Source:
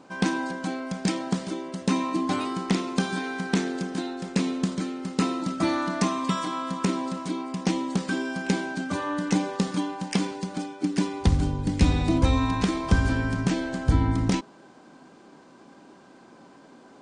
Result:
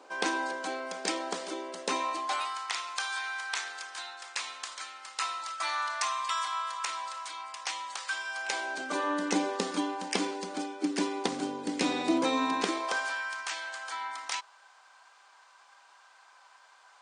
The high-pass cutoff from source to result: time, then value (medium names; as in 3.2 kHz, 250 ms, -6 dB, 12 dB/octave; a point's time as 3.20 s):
high-pass 24 dB/octave
1.87 s 390 Hz
2.60 s 920 Hz
8.28 s 920 Hz
9.01 s 300 Hz
12.60 s 300 Hz
13.21 s 920 Hz